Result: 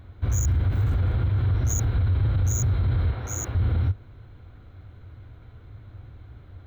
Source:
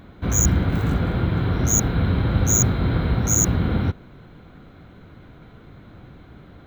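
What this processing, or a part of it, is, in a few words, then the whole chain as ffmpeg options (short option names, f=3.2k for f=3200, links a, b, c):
car stereo with a boomy subwoofer: -filter_complex "[0:a]asettb=1/sr,asplit=3[a][b][c];[a]atrim=end=3.114[d];[b]atrim=start=3.11:end=3.55,asetpts=PTS-STARTPTS,afade=t=in:d=0.004:c=qsin,afade=t=out:st=0.436:d=0.004:c=qsin,bass=f=250:g=-13,treble=f=4k:g=-7[e];[c]atrim=start=3.546[f];[d][e]acrossfade=d=0.004:c1=hsin:c2=qsin[g];[g][f]acrossfade=d=0.004:c1=qsin:c2=hsin,lowshelf=f=130:t=q:w=3:g=8,alimiter=limit=-9dB:level=0:latency=1:release=22,volume=-7.5dB"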